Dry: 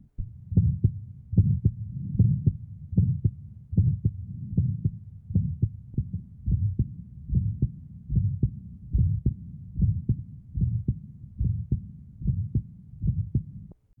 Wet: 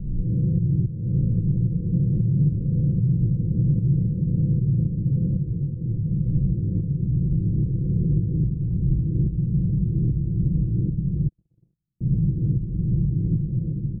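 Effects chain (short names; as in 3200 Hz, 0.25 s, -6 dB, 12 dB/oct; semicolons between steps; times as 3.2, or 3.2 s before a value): spectral swells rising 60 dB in 1.52 s; recorder AGC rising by 14 dB/s; Chebyshev low-pass 520 Hz, order 5; diffused feedback echo 1.344 s, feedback 40%, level -4 dB; limiter -14 dBFS, peak gain reduction 6.5 dB; 7.66–8.19 bell 400 Hz +7.5 dB 0.99 oct; 11.28–12.01 gate -14 dBFS, range -60 dB; dynamic EQ 200 Hz, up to -5 dB, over -38 dBFS, Q 3.2; comb 6 ms, depth 71%; 5.37–6.04 detuned doubles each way 50 cents -> 33 cents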